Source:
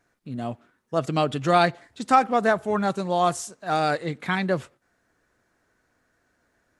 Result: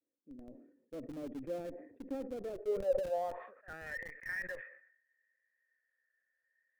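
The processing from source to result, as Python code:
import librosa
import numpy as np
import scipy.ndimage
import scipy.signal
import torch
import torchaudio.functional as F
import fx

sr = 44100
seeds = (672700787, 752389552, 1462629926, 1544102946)

p1 = fx.filter_sweep_bandpass(x, sr, from_hz=280.0, to_hz=1800.0, start_s=2.33, end_s=3.89, q=7.7)
p2 = fx.vibrato(p1, sr, rate_hz=0.61, depth_cents=46.0)
p3 = fx.formant_cascade(p2, sr, vowel='e')
p4 = fx.schmitt(p3, sr, flips_db=-51.0)
p5 = p3 + (p4 * librosa.db_to_amplitude(-10.0))
p6 = fx.sustainer(p5, sr, db_per_s=79.0)
y = p6 * librosa.db_to_amplitude(6.0)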